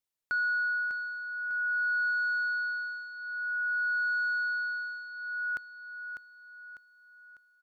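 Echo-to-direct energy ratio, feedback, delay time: -7.0 dB, 44%, 599 ms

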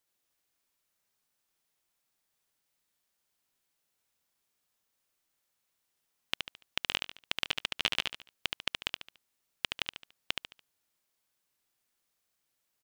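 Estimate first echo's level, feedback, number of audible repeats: -4.5 dB, 35%, 4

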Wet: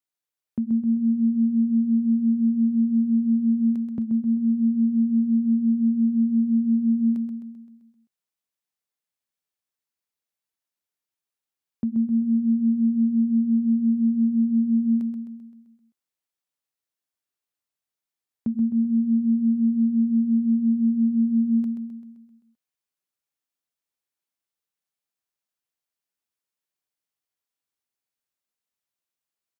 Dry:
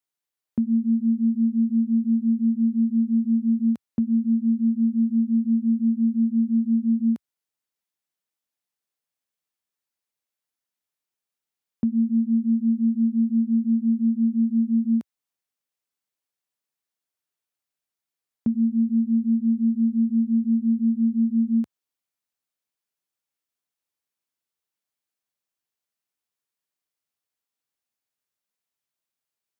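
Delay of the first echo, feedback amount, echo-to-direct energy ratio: 130 ms, 54%, -5.5 dB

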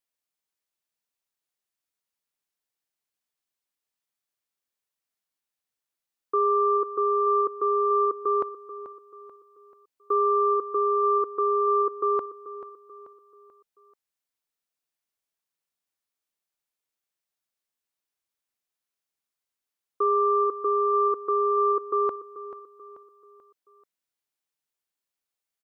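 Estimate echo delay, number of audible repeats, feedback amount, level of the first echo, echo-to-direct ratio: 436 ms, 3, 42%, -13.5 dB, -12.5 dB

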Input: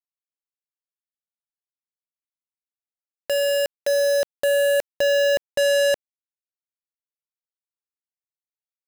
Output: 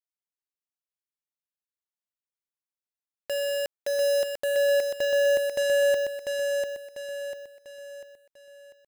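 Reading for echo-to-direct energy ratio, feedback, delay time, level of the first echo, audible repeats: -3.0 dB, 42%, 695 ms, -4.0 dB, 5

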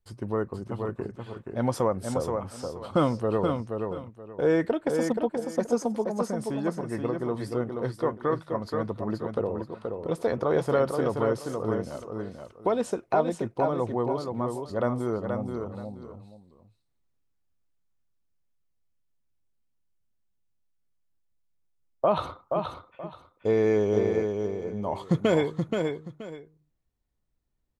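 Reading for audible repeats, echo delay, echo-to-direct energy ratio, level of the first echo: 2, 477 ms, -5.0 dB, -5.0 dB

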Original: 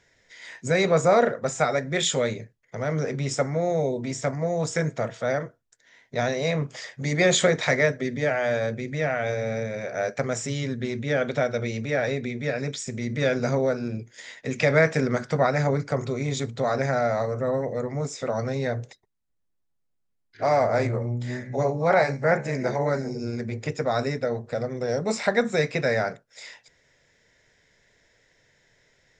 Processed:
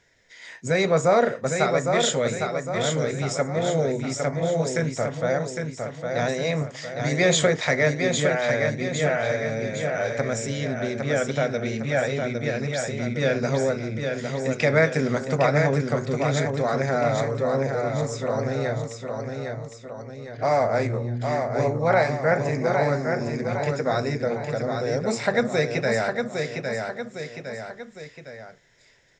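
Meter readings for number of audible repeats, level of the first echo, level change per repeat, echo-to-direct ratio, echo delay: 3, -5.0 dB, -6.0 dB, -4.0 dB, 808 ms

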